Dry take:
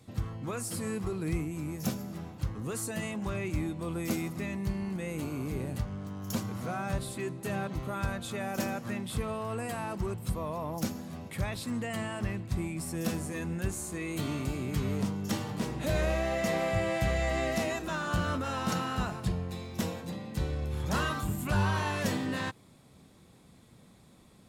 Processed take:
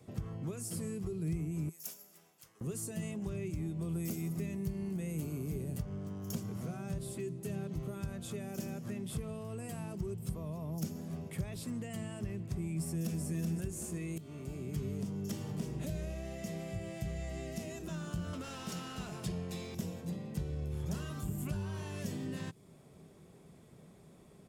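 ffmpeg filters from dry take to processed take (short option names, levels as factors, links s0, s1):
-filter_complex "[0:a]asettb=1/sr,asplit=3[s0][s1][s2];[s0]atrim=end=1.694[s3];[s1]atrim=start=1.69:end=2.61,asetpts=PTS-STARTPTS,afade=t=in:d=0.004:c=qsin,afade=t=out:st=0.916:d=0.004:c=qsin,aderivative[s4];[s2]atrim=start=2.606[s5];[s3][s4]acrossfade=d=0.004:c1=hsin:c2=qsin[s6];[s6][s5]acrossfade=d=0.004:c1=qsin:c2=hsin,asettb=1/sr,asplit=3[s7][s8][s9];[s7]atrim=end=3.894[s10];[s8]atrim=start=3.89:end=5.82,asetpts=PTS-STARTPTS,afade=t=in:d=0.004:c=qsin,afade=t=out:st=1.926:d=0.004:c=qsin,highshelf=f=11000:g=10[s11];[s9]atrim=start=5.816[s12];[s10][s11]acrossfade=d=0.004:c1=hsin:c2=qsin[s13];[s13][s12]acrossfade=d=0.004:c1=qsin:c2=hsin,asplit=2[s14][s15];[s15]afade=t=in:st=12.7:d=0.01,afade=t=out:st=13.22:d=0.01,aecho=0:1:380|760|1140|1520:0.707946|0.212384|0.0637151|0.0191145[s16];[s14][s16]amix=inputs=2:normalize=0,asettb=1/sr,asplit=3[s17][s18][s19];[s17]atrim=end=18.334[s20];[s18]atrim=start=18.33:end=19.75,asetpts=PTS-STARTPTS,afade=t=in:d=0.004:c=qsin,afade=t=out:st=1.416:d=0.004:c=qsin,asplit=2[s21][s22];[s22]highpass=f=720:p=1,volume=7.94,asoftclip=type=tanh:threshold=0.112[s23];[s21][s23]amix=inputs=2:normalize=0,lowpass=f=6500:p=1,volume=0.501[s24];[s19]atrim=start=19.746[s25];[s20][s24]acrossfade=d=0.004:c1=hsin:c2=qsin[s26];[s26][s25]acrossfade=d=0.004:c1=qsin:c2=hsin,asplit=2[s27][s28];[s27]atrim=end=14.18,asetpts=PTS-STARTPTS,afade=t=out:st=14.176:d=0.004:c=hsin:silence=0.0891251[s29];[s28]atrim=start=14.18,asetpts=PTS-STARTPTS,afade=t=in:d=0.81:silence=0.0891251[s30];[s29][s30]concat=n=2:v=0:a=1,acompressor=threshold=0.0282:ratio=6,equalizer=f=160:t=o:w=0.33:g=8,equalizer=f=400:t=o:w=0.33:g=11,equalizer=f=630:t=o:w=0.33:g=6,equalizer=f=4000:t=o:w=0.33:g=-7,acrossover=split=280|3000[s31][s32][s33];[s32]acompressor=threshold=0.00447:ratio=4[s34];[s31][s34][s33]amix=inputs=3:normalize=0,volume=0.668"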